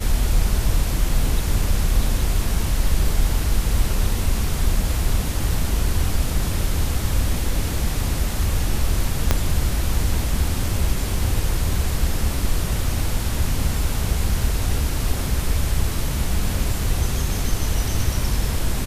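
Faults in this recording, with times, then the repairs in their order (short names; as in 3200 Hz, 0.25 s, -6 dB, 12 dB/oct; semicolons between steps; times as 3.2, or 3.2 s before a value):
9.31 pop -2 dBFS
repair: de-click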